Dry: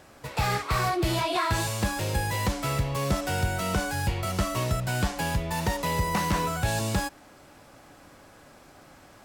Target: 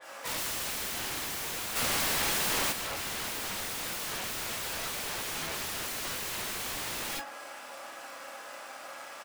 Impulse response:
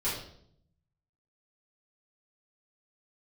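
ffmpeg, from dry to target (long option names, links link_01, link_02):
-filter_complex "[0:a]asplit=3[link_01][link_02][link_03];[link_01]afade=type=out:start_time=3.78:duration=0.02[link_04];[link_02]aecho=1:1:4.2:0.46,afade=type=in:start_time=3.78:duration=0.02,afade=type=out:start_time=4.34:duration=0.02[link_05];[link_03]afade=type=in:start_time=4.34:duration=0.02[link_06];[link_04][link_05][link_06]amix=inputs=3:normalize=0,asplit=3[link_07][link_08][link_09];[link_07]afade=type=out:start_time=5.19:duration=0.02[link_10];[link_08]lowpass=6000,afade=type=in:start_time=5.19:duration=0.02,afade=type=out:start_time=5.6:duration=0.02[link_11];[link_09]afade=type=in:start_time=5.6:duration=0.02[link_12];[link_10][link_11][link_12]amix=inputs=3:normalize=0,asplit=2[link_13][link_14];[link_14]adelay=109,lowpass=frequency=1200:poles=1,volume=-18dB,asplit=2[link_15][link_16];[link_16]adelay=109,lowpass=frequency=1200:poles=1,volume=0.27[link_17];[link_13][link_15][link_17]amix=inputs=3:normalize=0[link_18];[1:a]atrim=start_sample=2205,atrim=end_sample=3969,asetrate=25137,aresample=44100[link_19];[link_18][link_19]afir=irnorm=-1:irlink=0,acrusher=bits=4:mode=log:mix=0:aa=0.000001,acompressor=threshold=-15dB:ratio=16,highpass=720,aeval=exprs='(mod(25.1*val(0)+1,2)-1)/25.1':channel_layout=same,asplit=3[link_20][link_21][link_22];[link_20]afade=type=out:start_time=1.75:duration=0.02[link_23];[link_21]acontrast=75,afade=type=in:start_time=1.75:duration=0.02,afade=type=out:start_time=2.71:duration=0.02[link_24];[link_22]afade=type=in:start_time=2.71:duration=0.02[link_25];[link_23][link_24][link_25]amix=inputs=3:normalize=0,adynamicequalizer=threshold=0.00708:dfrequency=3600:dqfactor=0.7:tfrequency=3600:tqfactor=0.7:attack=5:release=100:ratio=0.375:range=2.5:mode=cutabove:tftype=highshelf"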